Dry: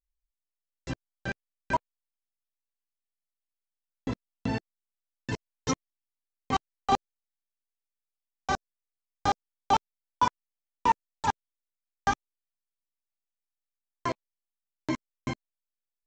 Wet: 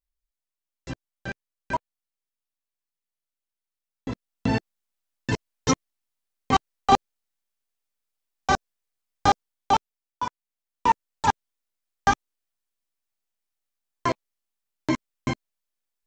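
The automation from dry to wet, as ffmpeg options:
-af "volume=7.94,afade=t=in:st=4.08:d=0.46:silence=0.446684,afade=t=out:st=9.27:d=0.96:silence=0.251189,afade=t=in:st=10.23:d=1.05:silence=0.281838"

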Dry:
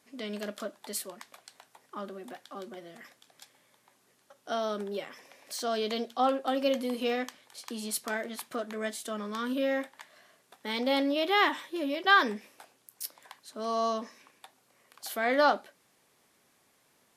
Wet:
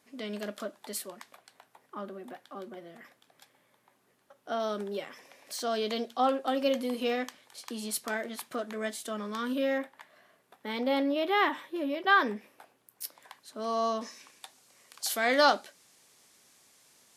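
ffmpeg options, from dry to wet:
-af "asetnsamples=n=441:p=0,asendcmd='1.34 equalizer g -8;4.6 equalizer g -0.5;9.78 equalizer g -9;13.02 equalizer g -1.5;14.01 equalizer g 10.5',equalizer=f=6600:t=o:w=2.1:g=-2"

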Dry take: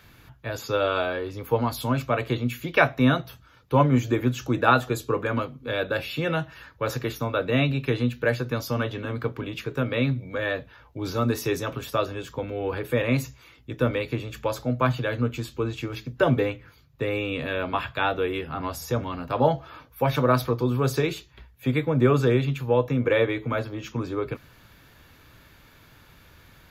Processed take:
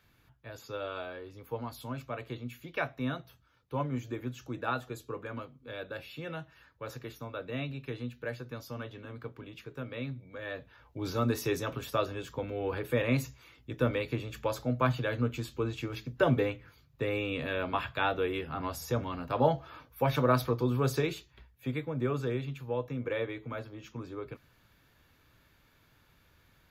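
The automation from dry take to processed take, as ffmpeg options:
-af "volume=0.562,afade=t=in:st=10.41:d=0.59:silence=0.354813,afade=t=out:st=20.85:d=1.07:silence=0.446684"

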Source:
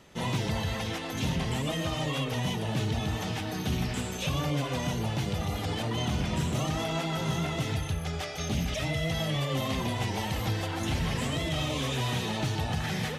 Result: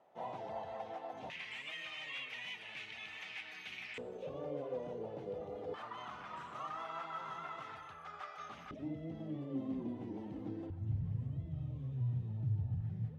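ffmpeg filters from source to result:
-af "asetnsamples=n=441:p=0,asendcmd='1.3 bandpass f 2300;3.98 bandpass f 480;5.74 bandpass f 1200;8.71 bandpass f 290;10.7 bandpass f 110',bandpass=f=720:t=q:w=4.4:csg=0"

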